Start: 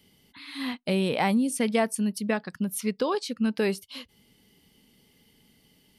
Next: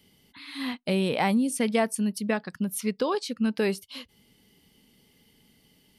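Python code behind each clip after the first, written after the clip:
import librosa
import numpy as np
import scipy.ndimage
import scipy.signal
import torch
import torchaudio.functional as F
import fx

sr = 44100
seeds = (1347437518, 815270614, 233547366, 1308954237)

y = x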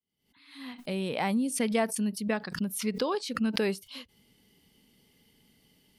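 y = fx.fade_in_head(x, sr, length_s=1.57)
y = fx.pre_swell(y, sr, db_per_s=110.0)
y = y * 10.0 ** (-3.0 / 20.0)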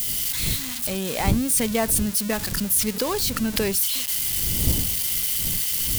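y = x + 0.5 * 10.0 ** (-20.5 / 20.0) * np.diff(np.sign(x), prepend=np.sign(x[:1]))
y = fx.dmg_wind(y, sr, seeds[0], corner_hz=130.0, level_db=-35.0)
y = y * 10.0 ** (3.5 / 20.0)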